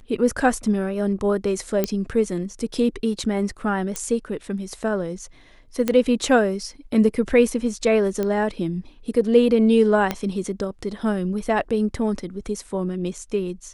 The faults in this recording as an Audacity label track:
1.840000	1.840000	pop -7 dBFS
3.960000	3.960000	pop -11 dBFS
5.880000	5.880000	pop -8 dBFS
8.230000	8.230000	pop -13 dBFS
10.110000	10.110000	pop -8 dBFS

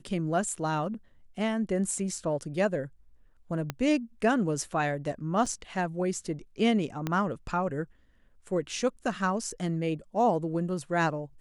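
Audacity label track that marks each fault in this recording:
3.700000	3.700000	pop -16 dBFS
5.460000	5.460000	dropout 4.6 ms
7.070000	7.070000	pop -16 dBFS

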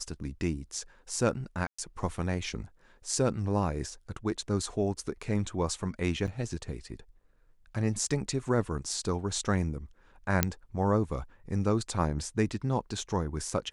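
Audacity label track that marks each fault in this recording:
1.670000	1.780000	dropout 115 ms
6.270000	6.280000	dropout 7.3 ms
10.430000	10.430000	pop -6 dBFS

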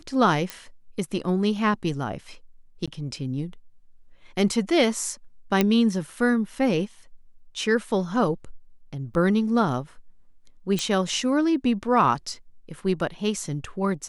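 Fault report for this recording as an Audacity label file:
0.500000	0.500000	pop -14 dBFS
2.860000	2.880000	dropout 16 ms
5.610000	5.610000	pop -6 dBFS
9.140000	9.150000	dropout 5.5 ms
10.790000	10.790000	pop -11 dBFS

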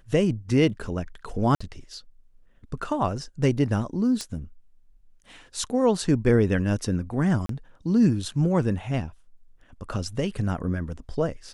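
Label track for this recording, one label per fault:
1.550000	1.600000	dropout 55 ms
4.210000	4.210000	pop -17 dBFS
7.460000	7.490000	dropout 33 ms

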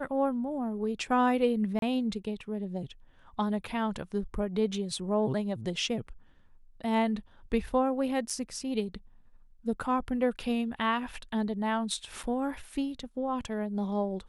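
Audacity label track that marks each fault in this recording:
1.790000	1.820000	dropout 32 ms
8.300000	8.300000	dropout 4.1 ms
12.230000	12.240000	dropout 5.6 ms

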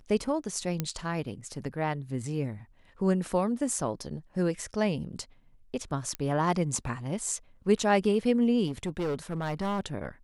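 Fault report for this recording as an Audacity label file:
0.800000	0.800000	pop -14 dBFS
6.150000	6.150000	pop -17 dBFS
8.660000	9.800000	clipped -27 dBFS

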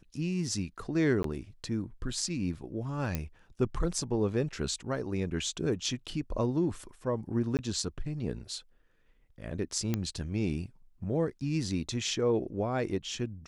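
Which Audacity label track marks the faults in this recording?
1.230000	1.240000	dropout 13 ms
3.150000	3.150000	pop -16 dBFS
7.570000	7.590000	dropout 18 ms
9.940000	9.940000	pop -16 dBFS

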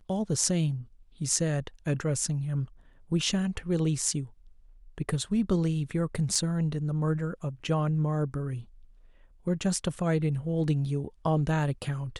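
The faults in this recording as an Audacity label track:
6.350000	6.350000	dropout 3.5 ms

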